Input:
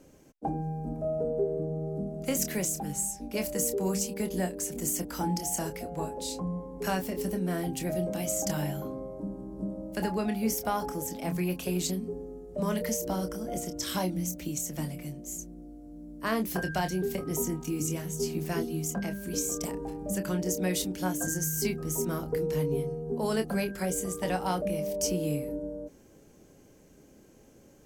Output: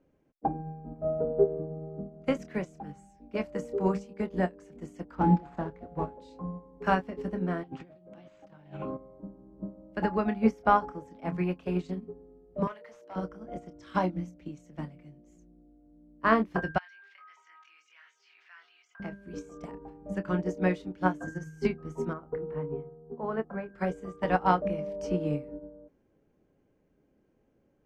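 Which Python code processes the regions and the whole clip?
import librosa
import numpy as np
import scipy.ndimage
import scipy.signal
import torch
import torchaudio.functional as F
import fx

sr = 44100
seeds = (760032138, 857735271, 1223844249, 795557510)

y = fx.chain(x, sr, fx.median_filter(points=15),
    fx.low_shelf(hz=260.0, db=4.0), at=(5.15, 6.17))
y = fx.chain(y, sr, fx.highpass(hz=68.0, slope=12),
    fx.over_compress(threshold_db=-36.0, ratio=-0.5),
    fx.resample_linear(factor=3), at=(7.63, 8.97))
y = fx.chain(y, sr, fx.highpass(hz=590.0, slope=12),
    fx.clip_hard(threshold_db=-32.0), at=(12.67, 13.16))
y = fx.chain(y, sr, fx.highpass(hz=1500.0, slope=24),
    fx.air_absorb(metres=180.0),
    fx.env_flatten(amount_pct=70), at=(16.78, 19.0))
y = fx.chain(y, sr, fx.lowpass(hz=1500.0, slope=12),
    fx.low_shelf(hz=450.0, db=-5.0), at=(22.13, 23.74))
y = scipy.signal.sosfilt(scipy.signal.butter(2, 2300.0, 'lowpass', fs=sr, output='sos'), y)
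y = fx.dynamic_eq(y, sr, hz=1200.0, q=1.6, threshold_db=-52.0, ratio=4.0, max_db=6)
y = fx.upward_expand(y, sr, threshold_db=-37.0, expansion=2.5)
y = F.gain(torch.from_numpy(y), 7.0).numpy()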